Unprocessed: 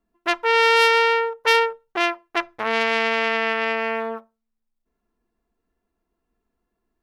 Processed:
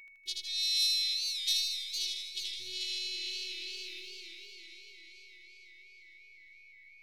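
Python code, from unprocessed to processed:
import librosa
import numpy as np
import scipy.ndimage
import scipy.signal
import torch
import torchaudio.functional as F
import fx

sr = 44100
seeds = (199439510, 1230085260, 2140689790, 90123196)

y = scipy.signal.sosfilt(scipy.signal.cheby1(4, 1.0, [180.0, 3600.0], 'bandstop', fs=sr, output='sos'), x)
y = y + 10.0 ** (-48.0 / 20.0) * np.sin(2.0 * np.pi * 2300.0 * np.arange(len(y)) / sr)
y = fx.robotise(y, sr, hz=370.0)
y = fx.echo_feedback(y, sr, ms=79, feedback_pct=55, wet_db=-3.0)
y = fx.echo_warbled(y, sr, ms=456, feedback_pct=58, rate_hz=2.8, cents=172, wet_db=-7.5)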